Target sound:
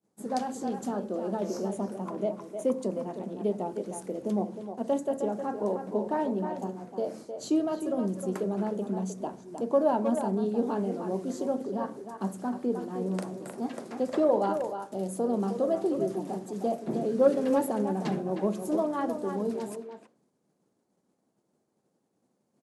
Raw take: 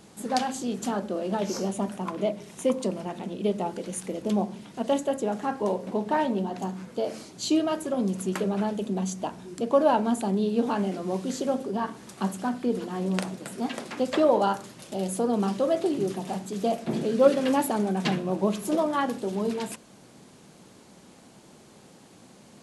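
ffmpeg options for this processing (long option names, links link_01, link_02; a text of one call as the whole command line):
ffmpeg -i in.wav -filter_complex "[0:a]agate=range=-33dB:threshold=-39dB:ratio=3:detection=peak,highpass=frequency=210:poles=1,equalizer=frequency=3000:width_type=o:width=1.3:gain=-8,acrossover=split=700|1000[link_01][link_02][link_03];[link_01]acontrast=69[link_04];[link_04][link_02][link_03]amix=inputs=3:normalize=0,asplit=2[link_05][link_06];[link_06]adelay=310,highpass=300,lowpass=3400,asoftclip=type=hard:threshold=-10dB,volume=-7dB[link_07];[link_05][link_07]amix=inputs=2:normalize=0,volume=-7dB" out.wav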